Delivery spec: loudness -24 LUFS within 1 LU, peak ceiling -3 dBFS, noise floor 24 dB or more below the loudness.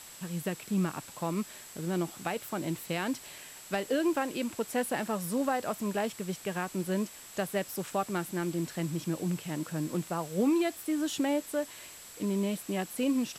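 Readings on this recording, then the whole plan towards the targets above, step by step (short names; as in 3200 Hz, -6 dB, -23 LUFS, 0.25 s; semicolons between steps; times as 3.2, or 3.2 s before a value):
steady tone 7700 Hz; tone level -51 dBFS; noise floor -49 dBFS; noise floor target -57 dBFS; loudness -33.0 LUFS; peak -15.5 dBFS; loudness target -24.0 LUFS
-> notch 7700 Hz, Q 30; denoiser 8 dB, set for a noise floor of -49 dBFS; gain +9 dB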